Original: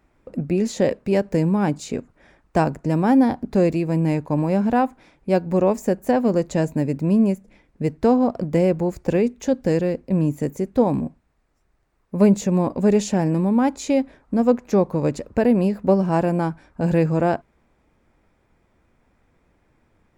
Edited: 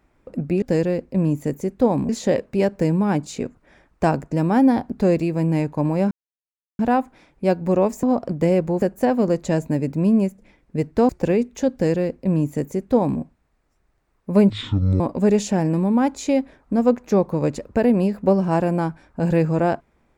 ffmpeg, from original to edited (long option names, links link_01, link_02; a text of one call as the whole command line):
ffmpeg -i in.wav -filter_complex "[0:a]asplit=9[link_01][link_02][link_03][link_04][link_05][link_06][link_07][link_08][link_09];[link_01]atrim=end=0.622[link_10];[link_02]atrim=start=9.578:end=11.052[link_11];[link_03]atrim=start=0.618:end=4.64,asetpts=PTS-STARTPTS,afade=type=out:start_time=4.018:duration=0.004:curve=hsin,apad=pad_dur=0.68[link_12];[link_04]atrim=start=4.64:end=5.882,asetpts=PTS-STARTPTS,afade=type=in:duration=0.004:curve=hsin[link_13];[link_05]atrim=start=8.148:end=8.942[link_14];[link_06]atrim=start=5.878:end=8.152[link_15];[link_07]atrim=start=8.938:end=12.354[link_16];[link_08]atrim=start=12.35:end=12.61,asetpts=PTS-STARTPTS,asetrate=22932,aresample=44100[link_17];[link_09]atrim=start=12.606[link_18];[link_10][link_11]acrossfade=duration=0.004:curve1=hsin:curve2=hsin[link_19];[link_12][link_13]concat=n=2:v=0:a=1[link_20];[link_19][link_20]acrossfade=duration=0.004:curve1=hsin:curve2=hsin[link_21];[link_21][link_14]acrossfade=duration=0.004:curve1=hsin:curve2=hsin[link_22];[link_22][link_15]acrossfade=duration=0.004:curve1=hsin:curve2=hsin[link_23];[link_23][link_16]acrossfade=duration=0.004:curve1=hsin:curve2=hsin[link_24];[link_24][link_17]acrossfade=duration=0.004:curve1=hsin:curve2=hsin[link_25];[link_25][link_18]acrossfade=duration=0.004:curve1=hsin:curve2=hsin" out.wav